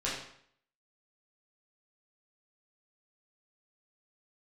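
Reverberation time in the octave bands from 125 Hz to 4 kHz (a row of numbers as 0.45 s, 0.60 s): 0.60 s, 0.65 s, 0.60 s, 0.65 s, 0.60 s, 0.55 s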